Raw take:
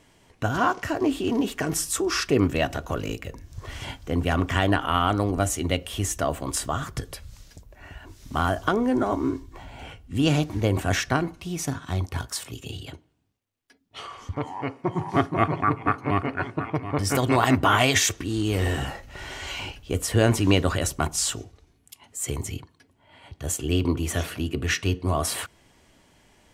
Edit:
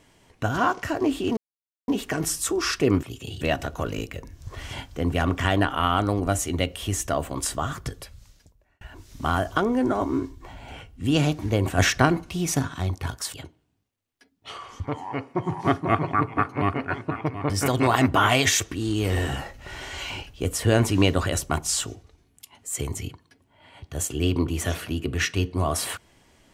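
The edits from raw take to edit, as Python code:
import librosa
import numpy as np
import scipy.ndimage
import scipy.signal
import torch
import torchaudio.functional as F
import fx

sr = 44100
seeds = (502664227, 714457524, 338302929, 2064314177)

y = fx.edit(x, sr, fx.insert_silence(at_s=1.37, length_s=0.51),
    fx.fade_out_span(start_s=6.88, length_s=1.04),
    fx.clip_gain(start_s=10.89, length_s=0.99, db=4.5),
    fx.move(start_s=12.45, length_s=0.38, to_s=2.52), tone=tone)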